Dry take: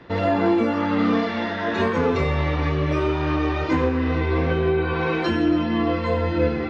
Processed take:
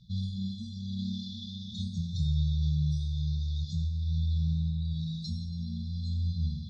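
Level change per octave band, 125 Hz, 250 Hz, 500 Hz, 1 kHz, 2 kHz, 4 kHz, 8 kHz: −3.5 dB, −14.5 dB, below −40 dB, below −40 dB, below −40 dB, −7.0 dB, can't be measured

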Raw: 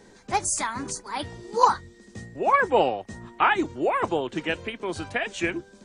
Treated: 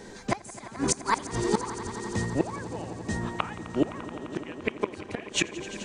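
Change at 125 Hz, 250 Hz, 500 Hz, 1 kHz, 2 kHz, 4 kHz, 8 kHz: +5.0, +1.0, −5.5, −10.0, −7.0, −1.0, −2.0 decibels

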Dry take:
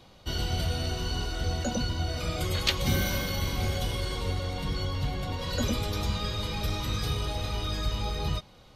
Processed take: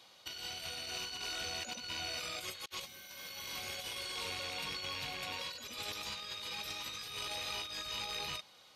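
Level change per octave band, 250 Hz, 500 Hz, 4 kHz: −21.0, −14.0, −5.0 decibels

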